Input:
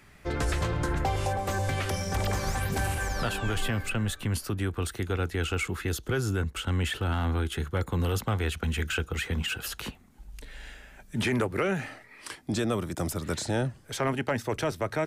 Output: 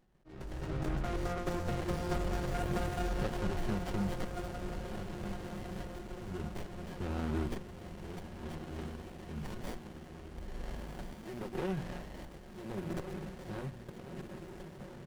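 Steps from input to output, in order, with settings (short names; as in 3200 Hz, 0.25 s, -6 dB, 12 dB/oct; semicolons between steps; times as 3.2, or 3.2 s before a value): gliding pitch shift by -2 st ending unshifted; gate with hold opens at -42 dBFS; comb 5.5 ms, depth 64%; de-hum 59.04 Hz, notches 5; compressor 6:1, threshold -38 dBFS, peak gain reduction 15.5 dB; auto swell 0.608 s; diffused feedback echo 1.447 s, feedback 57%, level -7 dB; running maximum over 33 samples; gain +7.5 dB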